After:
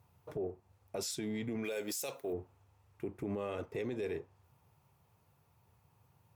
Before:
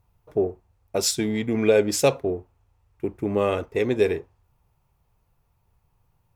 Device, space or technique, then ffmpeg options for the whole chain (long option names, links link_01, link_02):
podcast mastering chain: -filter_complex "[0:a]asplit=3[link_01][link_02][link_03];[link_01]afade=type=out:start_time=1.63:duration=0.02[link_04];[link_02]aemphasis=mode=production:type=riaa,afade=type=in:start_time=1.63:duration=0.02,afade=type=out:start_time=2.32:duration=0.02[link_05];[link_03]afade=type=in:start_time=2.32:duration=0.02[link_06];[link_04][link_05][link_06]amix=inputs=3:normalize=0,highpass=frequency=86:width=0.5412,highpass=frequency=86:width=1.3066,acompressor=threshold=-34dB:ratio=4,alimiter=level_in=7.5dB:limit=-24dB:level=0:latency=1:release=11,volume=-7.5dB,volume=2dB" -ar 44100 -c:a libmp3lame -b:a 128k